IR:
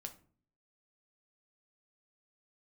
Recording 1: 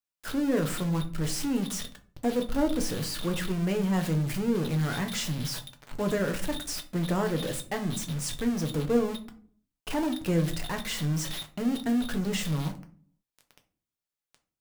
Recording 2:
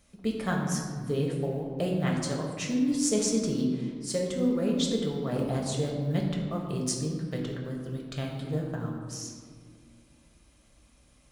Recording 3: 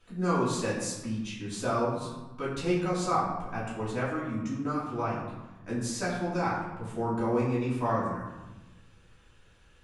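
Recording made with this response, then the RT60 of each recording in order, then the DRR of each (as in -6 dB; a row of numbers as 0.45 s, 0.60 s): 1; 0.45 s, 1.9 s, 1.1 s; 5.0 dB, -1.5 dB, -10.5 dB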